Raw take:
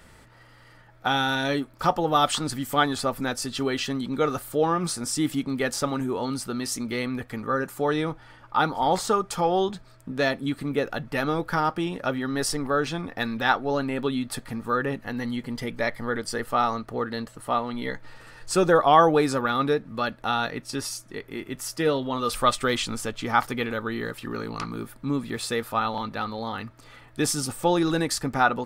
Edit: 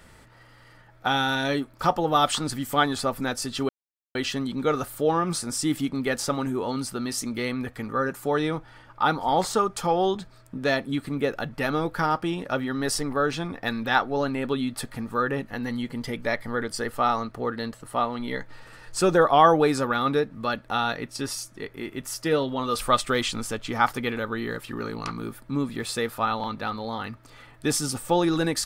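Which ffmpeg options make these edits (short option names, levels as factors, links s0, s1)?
-filter_complex "[0:a]asplit=2[s0][s1];[s0]atrim=end=3.69,asetpts=PTS-STARTPTS,afade=t=out:st=3.686:d=0.004:c=hsin,apad=pad_dur=0.46[s2];[s1]atrim=start=3.69,asetpts=PTS-STARTPTS,afade=t=in:d=0.004:c=hsin[s3];[s2][s3]concat=n=2:v=0:a=1"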